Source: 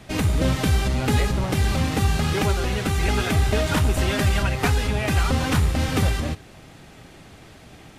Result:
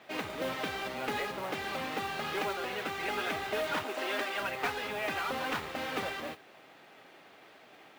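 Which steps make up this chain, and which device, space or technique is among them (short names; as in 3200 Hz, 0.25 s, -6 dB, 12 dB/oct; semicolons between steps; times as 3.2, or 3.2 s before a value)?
3.83–4.4 steep high-pass 230 Hz 36 dB/oct; carbon microphone (BPF 450–3400 Hz; soft clip -18.5 dBFS, distortion -20 dB; modulation noise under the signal 19 dB); gain -5 dB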